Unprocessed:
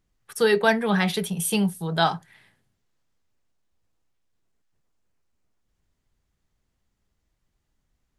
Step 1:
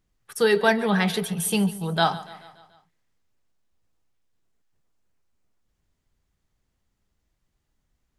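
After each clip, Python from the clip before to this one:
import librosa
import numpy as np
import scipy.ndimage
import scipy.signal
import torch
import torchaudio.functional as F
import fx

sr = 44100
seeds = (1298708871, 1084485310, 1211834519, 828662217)

y = fx.echo_feedback(x, sr, ms=144, feedback_pct=56, wet_db=-17.5)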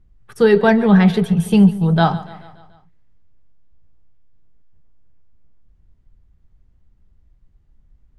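y = fx.riaa(x, sr, side='playback')
y = F.gain(torch.from_numpy(y), 4.0).numpy()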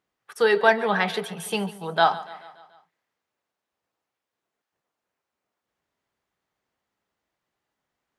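y = scipy.signal.sosfilt(scipy.signal.butter(2, 630.0, 'highpass', fs=sr, output='sos'), x)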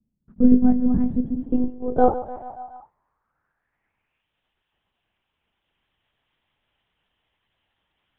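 y = fx.lpc_monotone(x, sr, seeds[0], pitch_hz=250.0, order=8)
y = fx.filter_sweep_lowpass(y, sr, from_hz=220.0, to_hz=3100.0, start_s=1.18, end_s=4.33, q=4.5)
y = F.gain(torch.from_numpy(y), 5.0).numpy()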